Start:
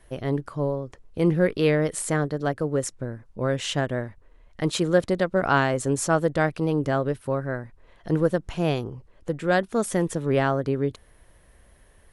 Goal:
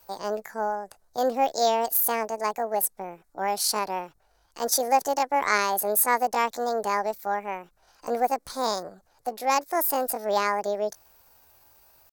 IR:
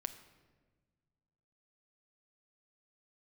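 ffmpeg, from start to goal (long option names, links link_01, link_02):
-filter_complex "[0:a]aexciter=amount=15.2:drive=5.6:freq=2900,asetrate=66075,aresample=44100,atempo=0.66742,acrossover=split=400 2400:gain=0.158 1 0.126[link_01][link_02][link_03];[link_01][link_02][link_03]amix=inputs=3:normalize=0"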